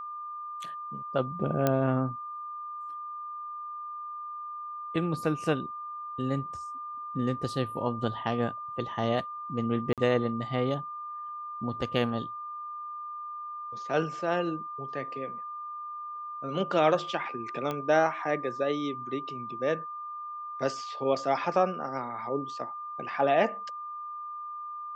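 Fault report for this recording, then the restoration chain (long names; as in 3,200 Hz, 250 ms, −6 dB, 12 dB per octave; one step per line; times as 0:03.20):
whistle 1,200 Hz −36 dBFS
0:01.67: click −11 dBFS
0:09.93–0:09.98: drop-out 47 ms
0:17.71: click −19 dBFS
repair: click removal
notch filter 1,200 Hz, Q 30
repair the gap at 0:09.93, 47 ms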